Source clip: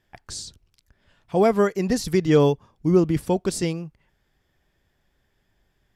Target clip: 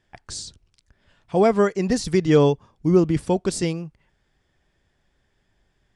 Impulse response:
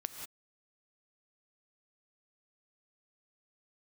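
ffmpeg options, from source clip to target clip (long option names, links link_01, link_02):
-af "aresample=22050,aresample=44100,volume=1dB"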